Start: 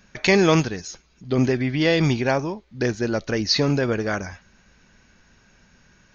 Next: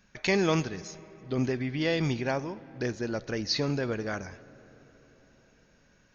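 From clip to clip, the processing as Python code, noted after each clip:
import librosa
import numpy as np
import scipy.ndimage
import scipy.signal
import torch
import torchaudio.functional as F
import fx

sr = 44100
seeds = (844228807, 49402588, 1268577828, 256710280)

y = fx.rev_freeverb(x, sr, rt60_s=4.7, hf_ratio=0.45, predelay_ms=5, drr_db=18.0)
y = y * 10.0 ** (-8.5 / 20.0)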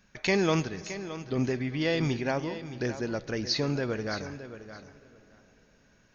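y = fx.echo_feedback(x, sr, ms=619, feedback_pct=15, wet_db=-12.5)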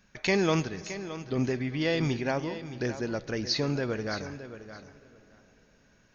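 y = x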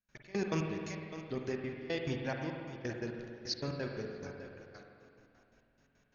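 y = fx.step_gate(x, sr, bpm=174, pattern='.x..x.x.x', floor_db=-24.0, edge_ms=4.5)
y = fx.rev_spring(y, sr, rt60_s=2.1, pass_ms=(44, 51), chirp_ms=30, drr_db=2.0)
y = y * 10.0 ** (-7.5 / 20.0)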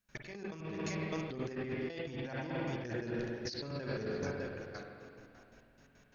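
y = fx.over_compress(x, sr, threshold_db=-43.0, ratio=-1.0)
y = y * 10.0 ** (3.5 / 20.0)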